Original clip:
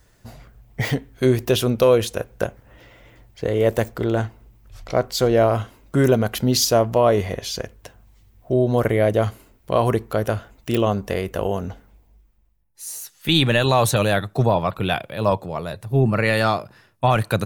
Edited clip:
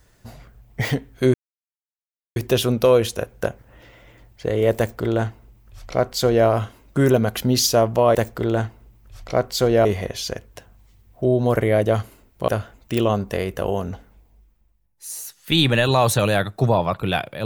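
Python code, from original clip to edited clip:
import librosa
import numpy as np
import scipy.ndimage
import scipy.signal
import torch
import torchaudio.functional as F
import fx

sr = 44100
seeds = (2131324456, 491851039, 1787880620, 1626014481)

y = fx.edit(x, sr, fx.insert_silence(at_s=1.34, length_s=1.02),
    fx.duplicate(start_s=3.75, length_s=1.7, to_s=7.13),
    fx.cut(start_s=9.76, length_s=0.49), tone=tone)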